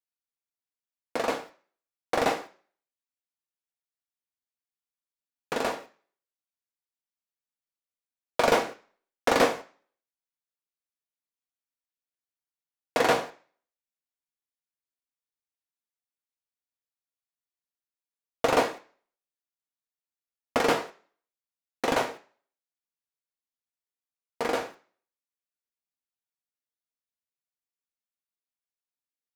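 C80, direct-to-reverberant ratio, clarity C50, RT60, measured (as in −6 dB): 20.5 dB, 4.0 dB, 16.5 dB, non-exponential decay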